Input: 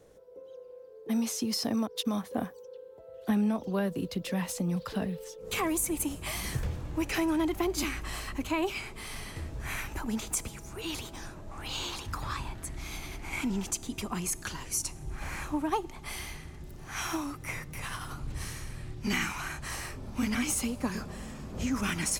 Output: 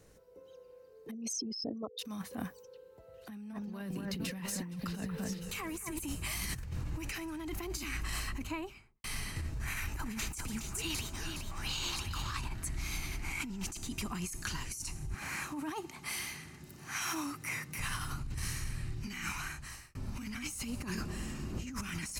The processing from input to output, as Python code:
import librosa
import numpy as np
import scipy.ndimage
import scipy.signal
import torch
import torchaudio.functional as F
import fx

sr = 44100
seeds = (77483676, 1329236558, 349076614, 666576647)

y = fx.envelope_sharpen(x, sr, power=3.0, at=(1.11, 1.99))
y = fx.echo_alternate(y, sr, ms=233, hz=2100.0, feedback_pct=57, wet_db=-5.0, at=(3.51, 5.98), fade=0.02)
y = fx.studio_fade_out(y, sr, start_s=8.11, length_s=0.93)
y = fx.echo_single(y, sr, ms=417, db=-7.5, at=(9.8, 12.44), fade=0.02)
y = fx.highpass(y, sr, hz=170.0, slope=12, at=(15.14, 17.79))
y = fx.small_body(y, sr, hz=(340.0, 2800.0), ring_ms=45, db=10, at=(20.77, 21.74))
y = fx.edit(y, sr, fx.fade_out_span(start_s=19.13, length_s=0.82), tone=tone)
y = fx.peak_eq(y, sr, hz=540.0, db=-10.5, octaves=1.7)
y = fx.notch(y, sr, hz=3400.0, q=9.4)
y = fx.over_compress(y, sr, threshold_db=-38.0, ratio=-1.0)